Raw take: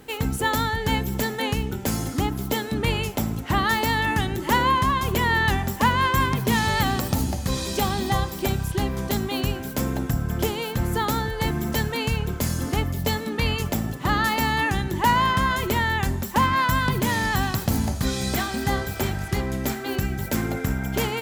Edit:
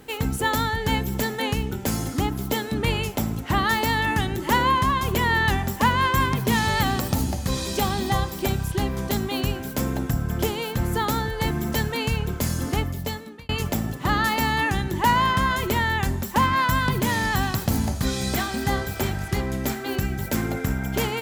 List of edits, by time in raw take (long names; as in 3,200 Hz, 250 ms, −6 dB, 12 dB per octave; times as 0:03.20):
0:12.75–0:13.49: fade out